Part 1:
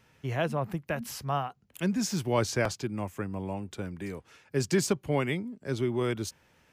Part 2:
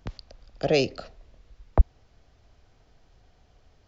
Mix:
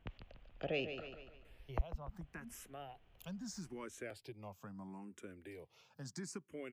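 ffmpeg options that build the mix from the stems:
ffmpeg -i stem1.wav -i stem2.wav -filter_complex "[0:a]highpass=120,acompressor=threshold=-54dB:ratio=1.5,asplit=2[link_01][link_02];[link_02]afreqshift=0.76[link_03];[link_01][link_03]amix=inputs=2:normalize=1,adelay=1450,volume=-3dB[link_04];[1:a]highshelf=frequency=3800:width_type=q:width=3:gain=-10,volume=-9.5dB,asplit=2[link_05][link_06];[link_06]volume=-10.5dB,aecho=0:1:145|290|435|580|725:1|0.39|0.152|0.0593|0.0231[link_07];[link_04][link_05][link_07]amix=inputs=3:normalize=0,acompressor=threshold=-47dB:ratio=1.5" out.wav

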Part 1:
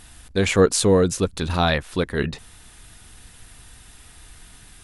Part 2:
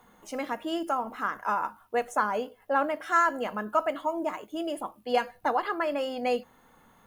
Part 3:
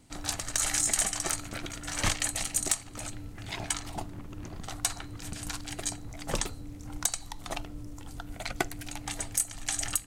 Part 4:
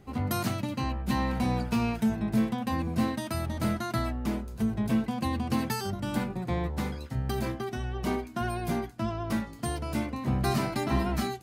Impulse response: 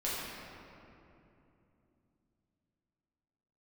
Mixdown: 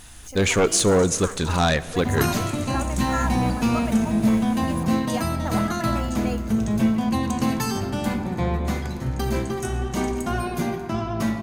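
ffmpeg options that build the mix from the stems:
-filter_complex "[0:a]aeval=exprs='0.708*sin(PI/2*2.51*val(0)/0.708)':channel_layout=same,volume=-11dB,asplit=2[link_01][link_02];[link_02]volume=-21dB[link_03];[1:a]aemphasis=mode=production:type=50kf,volume=-6.5dB[link_04];[2:a]adelay=250,volume=-16dB,asplit=2[link_05][link_06];[link_06]volume=-6dB[link_07];[3:a]adelay=1900,volume=2.5dB,asplit=2[link_08][link_09];[link_09]volume=-9dB[link_10];[4:a]atrim=start_sample=2205[link_11];[link_03][link_07][link_10]amix=inputs=3:normalize=0[link_12];[link_12][link_11]afir=irnorm=-1:irlink=0[link_13];[link_01][link_04][link_05][link_08][link_13]amix=inputs=5:normalize=0,equalizer=frequency=6500:width=6.2:gain=7"

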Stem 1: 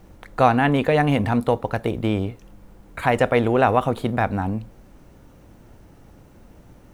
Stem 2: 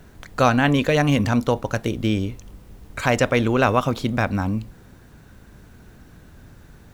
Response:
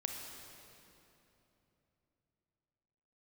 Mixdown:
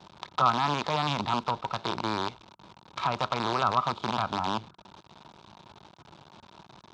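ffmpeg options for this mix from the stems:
-filter_complex "[0:a]acompressor=threshold=-24dB:ratio=6,alimiter=limit=-22.5dB:level=0:latency=1:release=17,acrusher=bits=5:dc=4:mix=0:aa=0.000001,volume=0.5dB,asplit=2[link_01][link_02];[1:a]lowpass=frequency=1300:width_type=q:width=9.6,equalizer=frequency=930:width=0.3:gain=-14.5,volume=-1,volume=-5.5dB[link_03];[link_02]apad=whole_len=305670[link_04];[link_03][link_04]sidechaingate=range=-20dB:threshold=-45dB:ratio=16:detection=peak[link_05];[link_01][link_05]amix=inputs=2:normalize=0,highpass=140,equalizer=frequency=270:width_type=q:width=4:gain=-8,equalizer=frequency=490:width_type=q:width=4:gain=-8,equalizer=frequency=950:width_type=q:width=4:gain=9,equalizer=frequency=1900:width_type=q:width=4:gain=-8,equalizer=frequency=3700:width_type=q:width=4:gain=8,lowpass=frequency=5500:width=0.5412,lowpass=frequency=5500:width=1.3066"

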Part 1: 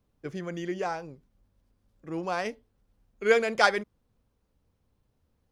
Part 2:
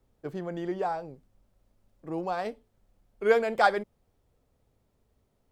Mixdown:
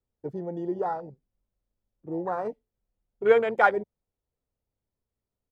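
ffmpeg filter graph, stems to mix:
ffmpeg -i stem1.wav -i stem2.wav -filter_complex "[0:a]aecho=1:1:2.1:0.74,volume=-8.5dB[link_01];[1:a]volume=-1dB[link_02];[link_01][link_02]amix=inputs=2:normalize=0,afwtdn=0.0251" out.wav

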